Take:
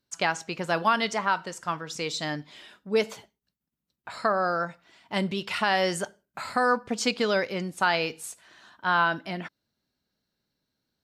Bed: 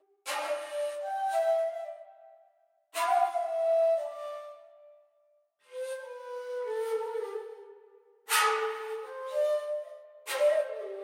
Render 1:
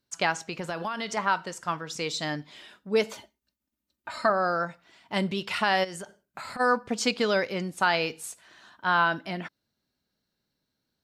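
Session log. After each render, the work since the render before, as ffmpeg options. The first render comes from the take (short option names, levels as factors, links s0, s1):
-filter_complex "[0:a]asettb=1/sr,asplit=3[s0][s1][s2];[s0]atrim=end=0.474[s3];[s1]atrim=start=0.47:end=1.17,asetpts=PTS-STARTPTS,afade=t=in:d=0.004:c=qsin,afade=t=out:st=0.696:d=0.004:c=qsin,acompressor=threshold=0.0398:ratio=6:attack=3.2:release=140:knee=1:detection=peak[s4];[s2]atrim=start=1.166[s5];[s3][s4]acrossfade=d=0.004:c1=hsin:c2=qsin[s6];[s6][s5]acrossfade=d=0.004:c1=qsin:c2=hsin,asettb=1/sr,asplit=3[s7][s8][s9];[s7]atrim=end=3.134[s10];[s8]atrim=start=3.13:end=4.3,asetpts=PTS-STARTPTS,afade=t=in:d=0.004:c=qsin,afade=t=out:st=1.166:d=0.004:c=qsin,aecho=1:1:3.3:0.73,atrim=end_sample=51597[s11];[s9]atrim=start=4.296[s12];[s10][s11]acrossfade=d=0.004:c1=hsin:c2=qsin[s13];[s13][s12]acrossfade=d=0.004:c1=qsin:c2=hsin,asplit=3[s14][s15][s16];[s14]afade=t=out:st=5.83:d=0.02[s17];[s15]acompressor=threshold=0.02:ratio=16:attack=3.2:release=140:knee=1:detection=peak,afade=t=in:st=5.83:d=0.02,afade=t=out:st=6.59:d=0.02[s18];[s16]afade=t=in:st=6.59:d=0.02[s19];[s17][s18][s19]amix=inputs=3:normalize=0"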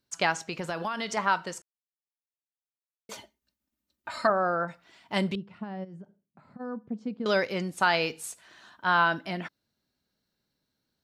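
-filter_complex "[0:a]asettb=1/sr,asplit=3[s0][s1][s2];[s0]atrim=end=4.274[s3];[s1]atrim=start=4.27:end=4.68,asetpts=PTS-STARTPTS,afade=t=in:d=0.004:c=qsin,afade=t=out:st=0.406:d=0.004:c=qsin,lowpass=1700[s4];[s2]atrim=start=4.676[s5];[s3][s4]acrossfade=d=0.004:c1=hsin:c2=qsin[s6];[s6][s5]acrossfade=d=0.004:c1=qsin:c2=hsin,asettb=1/sr,asplit=3[s7][s8][s9];[s7]atrim=end=5.354[s10];[s8]atrim=start=5.35:end=7.26,asetpts=PTS-STARTPTS,afade=t=in:d=0.004:c=qsin,afade=t=out:st=1.906:d=0.004:c=qsin,bandpass=f=180:t=q:w=1.8[s11];[s9]atrim=start=7.256[s12];[s10][s11]acrossfade=d=0.004:c1=hsin:c2=qsin[s13];[s13][s12]acrossfade=d=0.004:c1=qsin:c2=hsin,asplit=3[s14][s15][s16];[s14]atrim=end=1.62,asetpts=PTS-STARTPTS,afade=t=out:st=1.616:d=0.004:c=hsin[s17];[s15]atrim=start=1.62:end=3.09,asetpts=PTS-STARTPTS,volume=0[s18];[s16]atrim=start=3.09,asetpts=PTS-STARTPTS,afade=t=in:d=0.004:c=hsin[s19];[s17][s18][s19]concat=n=3:v=0:a=1"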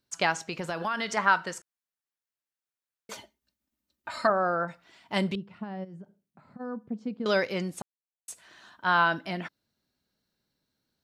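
-filter_complex "[0:a]asettb=1/sr,asplit=3[s0][s1][s2];[s0]atrim=end=0.814[s3];[s1]atrim=start=0.81:end=3.14,asetpts=PTS-STARTPTS,afade=t=in:d=0.004:c=qsin,afade=t=out:st=2.326:d=0.004:c=qsin,equalizer=f=1600:t=o:w=0.77:g=5.5[s4];[s2]atrim=start=3.136[s5];[s3][s4]acrossfade=d=0.004:c1=hsin:c2=qsin[s6];[s6][s5]acrossfade=d=0.004:c1=qsin:c2=hsin,asplit=3[s7][s8][s9];[s7]atrim=end=7.82,asetpts=PTS-STARTPTS,afade=t=out:st=7.816:d=0.004:c=hsin[s10];[s8]atrim=start=7.82:end=8.28,asetpts=PTS-STARTPTS,volume=0[s11];[s9]atrim=start=8.28,asetpts=PTS-STARTPTS,afade=t=in:d=0.004:c=hsin[s12];[s10][s11][s12]concat=n=3:v=0:a=1"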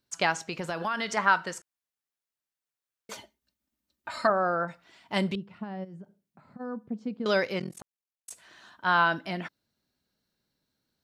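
-filter_complex "[0:a]asettb=1/sr,asplit=3[s0][s1][s2];[s0]atrim=end=7.594[s3];[s1]atrim=start=7.59:end=8.31,asetpts=PTS-STARTPTS,afade=t=in:d=0.004:c=qsin,afade=t=out:st=0.716:d=0.004:c=qsin,tremolo=f=43:d=1[s4];[s2]atrim=start=8.306[s5];[s3][s4]acrossfade=d=0.004:c1=hsin:c2=qsin[s6];[s6][s5]acrossfade=d=0.004:c1=qsin:c2=hsin"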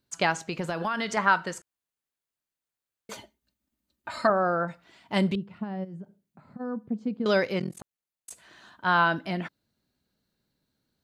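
-af "lowshelf=f=450:g=5,bandreject=f=5500:w=15"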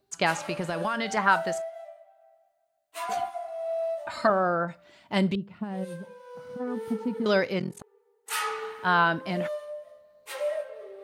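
-filter_complex "[1:a]volume=0.596[s0];[0:a][s0]amix=inputs=2:normalize=0"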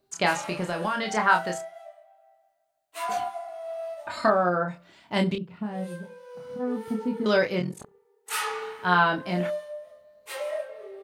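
-filter_complex "[0:a]asplit=2[s0][s1];[s1]adelay=28,volume=0.631[s2];[s0][s2]amix=inputs=2:normalize=0,asplit=2[s3][s4];[s4]adelay=68,lowpass=f=810:p=1,volume=0.0708,asplit=2[s5][s6];[s6]adelay=68,lowpass=f=810:p=1,volume=0.38,asplit=2[s7][s8];[s8]adelay=68,lowpass=f=810:p=1,volume=0.38[s9];[s3][s5][s7][s9]amix=inputs=4:normalize=0"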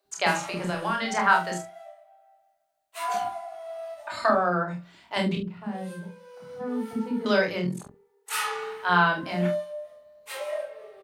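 -filter_complex "[0:a]asplit=2[s0][s1];[s1]adelay=45,volume=0.376[s2];[s0][s2]amix=inputs=2:normalize=0,acrossover=split=430[s3][s4];[s3]adelay=50[s5];[s5][s4]amix=inputs=2:normalize=0"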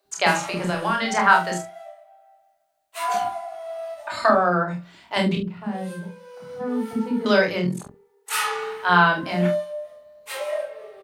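-af "volume=1.68"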